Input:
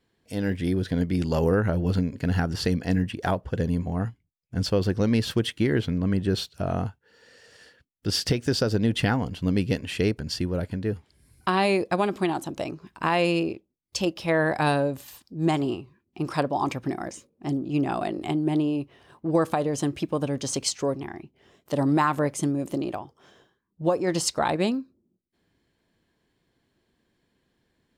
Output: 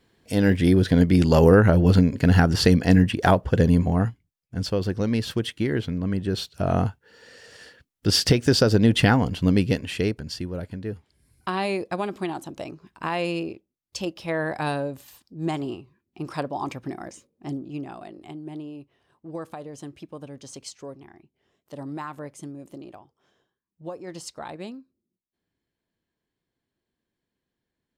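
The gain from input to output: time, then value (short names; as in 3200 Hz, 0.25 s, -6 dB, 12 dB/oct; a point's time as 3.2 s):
3.86 s +7.5 dB
4.55 s -1.5 dB
6.32 s -1.5 dB
6.76 s +5.5 dB
9.4 s +5.5 dB
10.43 s -4 dB
17.54 s -4 dB
17.97 s -12.5 dB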